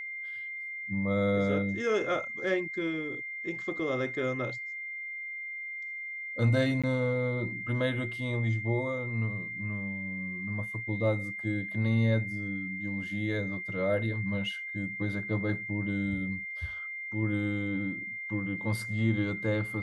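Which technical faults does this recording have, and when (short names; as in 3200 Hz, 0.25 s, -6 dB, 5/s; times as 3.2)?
tone 2100 Hz -36 dBFS
6.82–6.84 gap 16 ms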